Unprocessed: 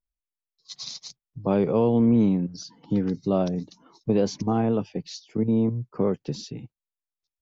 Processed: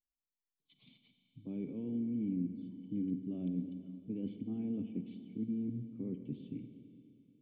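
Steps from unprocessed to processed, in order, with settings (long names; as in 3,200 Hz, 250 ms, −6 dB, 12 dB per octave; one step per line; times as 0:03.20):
reversed playback
downward compressor, threshold −28 dBFS, peak gain reduction 11.5 dB
reversed playback
formant resonators in series i
four-comb reverb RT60 2.9 s, combs from 33 ms, DRR 7.5 dB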